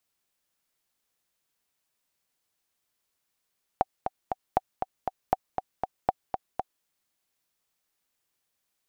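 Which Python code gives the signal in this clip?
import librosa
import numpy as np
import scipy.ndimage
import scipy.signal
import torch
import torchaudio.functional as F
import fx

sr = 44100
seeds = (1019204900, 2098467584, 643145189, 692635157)

y = fx.click_track(sr, bpm=237, beats=3, bars=4, hz=758.0, accent_db=6.5, level_db=-8.0)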